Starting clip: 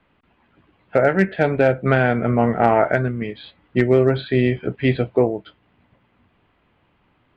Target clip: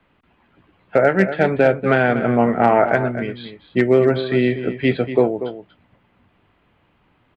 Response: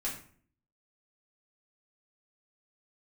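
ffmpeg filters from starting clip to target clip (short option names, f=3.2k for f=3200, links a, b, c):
-filter_complex "[0:a]acrossover=split=140[a][b];[a]acompressor=threshold=-39dB:ratio=6[c];[c][b]amix=inputs=2:normalize=0,asplit=2[d][e];[e]adelay=239.1,volume=-11dB,highshelf=f=4k:g=-5.38[f];[d][f]amix=inputs=2:normalize=0,volume=1.5dB"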